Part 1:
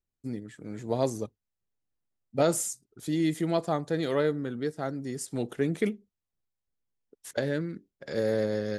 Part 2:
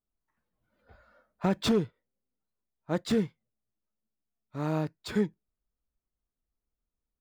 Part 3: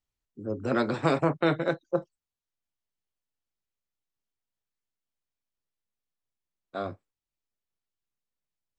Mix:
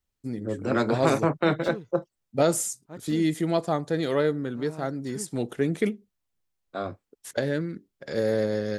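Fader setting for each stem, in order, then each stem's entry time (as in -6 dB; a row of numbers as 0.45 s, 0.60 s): +2.5 dB, -12.5 dB, +1.5 dB; 0.00 s, 0.00 s, 0.00 s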